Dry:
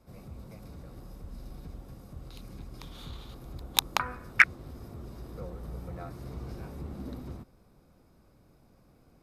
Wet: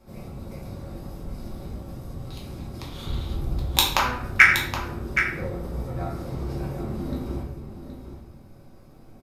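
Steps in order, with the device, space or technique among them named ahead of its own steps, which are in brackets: 3.07–3.58 low shelf 150 Hz +10 dB; echo 0.771 s -10 dB; shoebox room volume 110 m³, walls mixed, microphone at 1.1 m; parallel distortion (in parallel at -10 dB: hard clip -21 dBFS, distortion -5 dB); on the sum: gain +2 dB

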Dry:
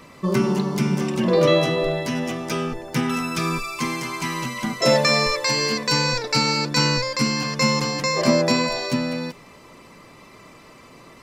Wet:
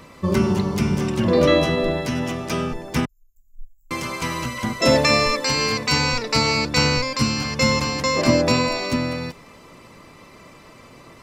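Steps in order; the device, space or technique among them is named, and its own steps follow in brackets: 3.05–3.91 inverse Chebyshev band-stop 210–6800 Hz, stop band 80 dB; octave pedal (harmoniser -12 st -6 dB)

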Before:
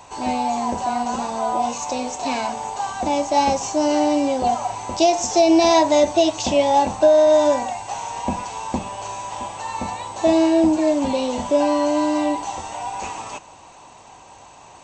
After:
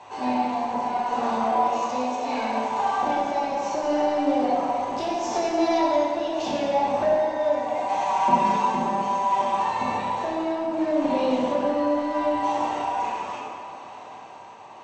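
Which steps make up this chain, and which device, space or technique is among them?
AM radio (BPF 160–3500 Hz; compressor 4:1, threshold -22 dBFS, peak gain reduction 10.5 dB; soft clip -17.5 dBFS, distortion -20 dB; tremolo 0.72 Hz, depth 39%); notches 60/120/180/240/300 Hz; 7.74–9.59 comb 5.2 ms, depth 90%; plate-style reverb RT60 2.1 s, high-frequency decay 0.65×, DRR -6 dB; gain -2.5 dB

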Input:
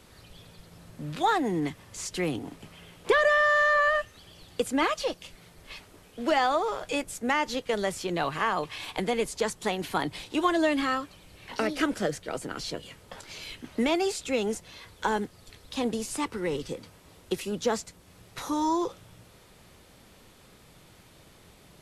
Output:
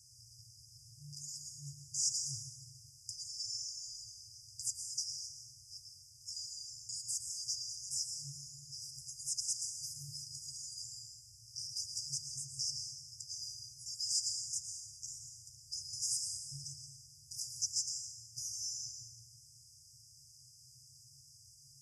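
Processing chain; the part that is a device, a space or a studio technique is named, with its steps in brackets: supermarket ceiling speaker (BPF 280–5900 Hz; reverb RT60 1.3 s, pre-delay 0.104 s, DRR 3.5 dB); 3.38–4.72 bell 1900 Hz +13.5 dB -> +5.5 dB 2.5 oct; FFT band-reject 140–4800 Hz; gain +8.5 dB

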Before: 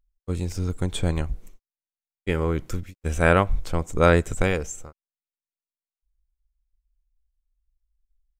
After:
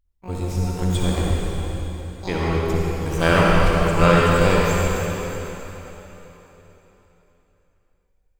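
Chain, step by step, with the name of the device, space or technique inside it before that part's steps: shimmer-style reverb (harmoniser +12 st -8 dB; reverb RT60 3.7 s, pre-delay 50 ms, DRR -4.5 dB); gain -1.5 dB

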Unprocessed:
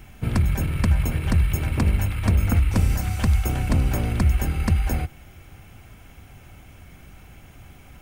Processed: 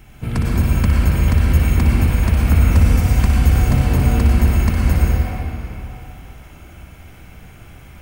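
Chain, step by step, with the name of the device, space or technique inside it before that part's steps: tunnel (flutter echo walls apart 10.4 m, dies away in 0.5 s; reverb RT60 3.4 s, pre-delay 89 ms, DRR -3.5 dB)

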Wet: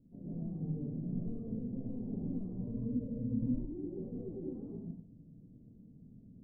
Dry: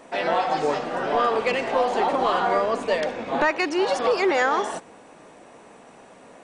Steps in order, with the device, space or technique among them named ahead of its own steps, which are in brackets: 2.48–3.53 ripple EQ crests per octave 1, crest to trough 18 dB; club heard from the street (limiter -15 dBFS, peak gain reduction 8.5 dB; LPF 180 Hz 24 dB/oct; reverb RT60 0.55 s, pre-delay 0.113 s, DRR -5.5 dB); gain +1 dB

